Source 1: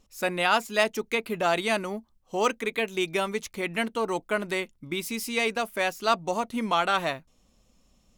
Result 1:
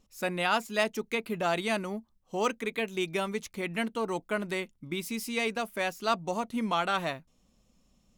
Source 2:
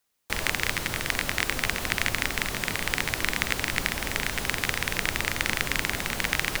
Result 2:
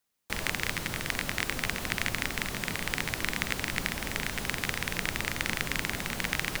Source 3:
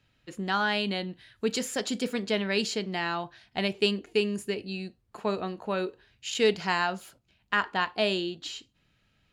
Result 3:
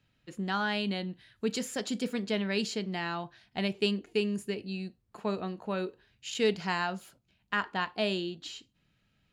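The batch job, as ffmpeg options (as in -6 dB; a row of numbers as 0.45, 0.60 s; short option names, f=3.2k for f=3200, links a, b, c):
-af "equalizer=f=180:w=1.2:g=4.5,volume=-4.5dB"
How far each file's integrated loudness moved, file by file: -4.0, -4.5, -3.5 LU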